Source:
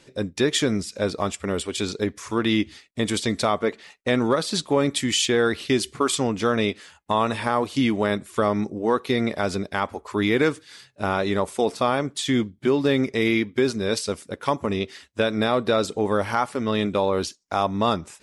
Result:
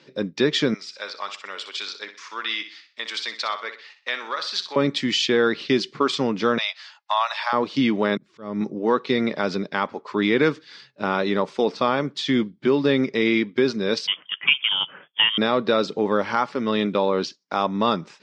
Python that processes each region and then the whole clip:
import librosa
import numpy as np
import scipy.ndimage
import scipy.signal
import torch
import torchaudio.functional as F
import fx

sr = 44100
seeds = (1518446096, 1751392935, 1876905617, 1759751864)

y = fx.chain(x, sr, fx.highpass(hz=1200.0, slope=12),
    fx.echo_feedback(ms=62, feedback_pct=35, wet_db=-11.0), at=(0.74, 4.76))
y = fx.chain(y, sr, fx.steep_highpass(hz=630.0, slope=72),
    fx.peak_eq(hz=4900.0, db=6.0, octaves=1.1), at=(6.58, 7.53))
y = fx.chain(y, sr, fx.auto_swell(attack_ms=622.0),
    fx.low_shelf(hz=350.0, db=11.0), at=(8.17, 8.61))
y = fx.chain(y, sr, fx.peak_eq(hz=790.0, db=5.5, octaves=0.9),
    fx.freq_invert(carrier_hz=3400), at=(14.07, 15.38))
y = scipy.signal.sosfilt(scipy.signal.ellip(3, 1.0, 50, [150.0, 5000.0], 'bandpass', fs=sr, output='sos'), y)
y = fx.peak_eq(y, sr, hz=710.0, db=-6.0, octaves=0.29)
y = y * librosa.db_to_amplitude(2.0)